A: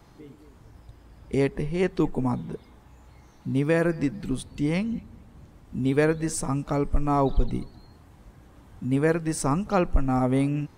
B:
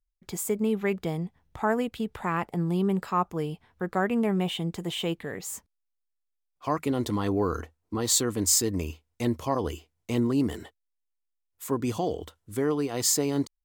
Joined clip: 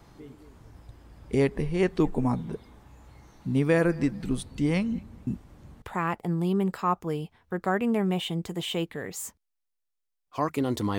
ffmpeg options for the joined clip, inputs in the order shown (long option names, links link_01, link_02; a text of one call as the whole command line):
ffmpeg -i cue0.wav -i cue1.wav -filter_complex "[0:a]apad=whole_dur=10.98,atrim=end=10.98,asplit=2[link_01][link_02];[link_01]atrim=end=5.272[link_03];[link_02]atrim=start=5.268:end=5.822,asetpts=PTS-STARTPTS,areverse[link_04];[1:a]atrim=start=2.108:end=7.27[link_05];[link_03][link_04]acrossfade=duration=0.004:curve1=hsin:curve2=hsin[link_06];[link_06][link_05]acrossfade=duration=0.004:curve1=hsin:curve2=hsin" out.wav